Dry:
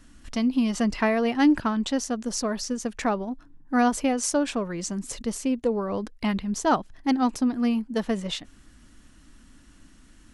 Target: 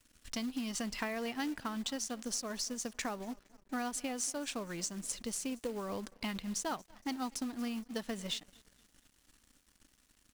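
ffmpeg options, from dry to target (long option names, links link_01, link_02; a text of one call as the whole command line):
ffmpeg -i in.wav -af "highshelf=frequency=2000:gain=11,acompressor=threshold=-25dB:ratio=6,aecho=1:1:233|466|699|932:0.0794|0.0421|0.0223|0.0118,aeval=exprs='sgn(val(0))*max(abs(val(0))-0.00376,0)':channel_layout=same,acrusher=bits=4:mode=log:mix=0:aa=0.000001,volume=-9dB" out.wav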